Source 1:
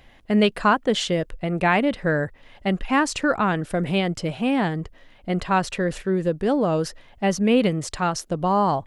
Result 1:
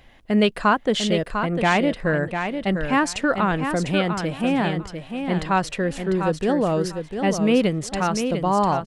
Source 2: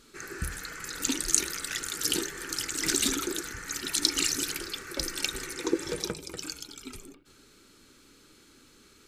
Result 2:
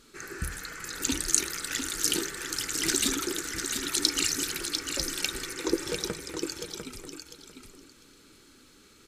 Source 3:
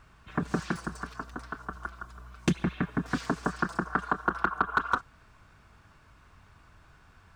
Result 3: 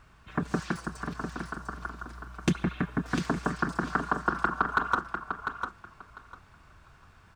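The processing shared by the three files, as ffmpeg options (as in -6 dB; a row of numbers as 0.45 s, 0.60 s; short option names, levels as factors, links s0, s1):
-af "aecho=1:1:699|1398|2097:0.447|0.0804|0.0145"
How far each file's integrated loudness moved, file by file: +0.5 LU, +0.5 LU, 0.0 LU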